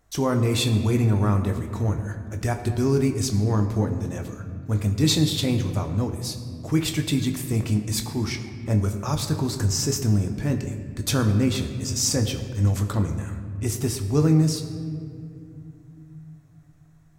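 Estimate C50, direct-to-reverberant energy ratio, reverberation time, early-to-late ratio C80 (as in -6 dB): 8.5 dB, 5.0 dB, 2.5 s, 9.5 dB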